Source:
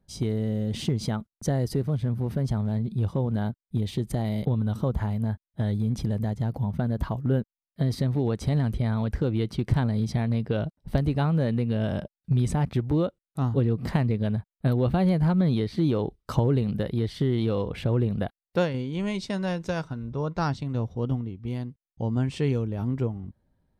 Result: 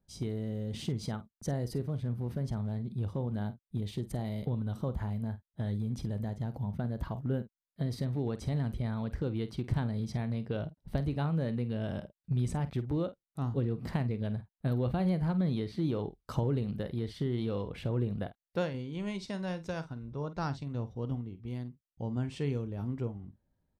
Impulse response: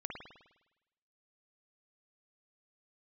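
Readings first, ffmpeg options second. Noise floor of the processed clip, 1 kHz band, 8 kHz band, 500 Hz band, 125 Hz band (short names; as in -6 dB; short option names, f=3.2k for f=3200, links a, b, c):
under -85 dBFS, -8.0 dB, n/a, -8.0 dB, -8.0 dB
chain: -filter_complex "[0:a]asplit=2[a][b];[b]adelay=49,volume=-13.5dB[c];[a][c]amix=inputs=2:normalize=0,volume=-8dB"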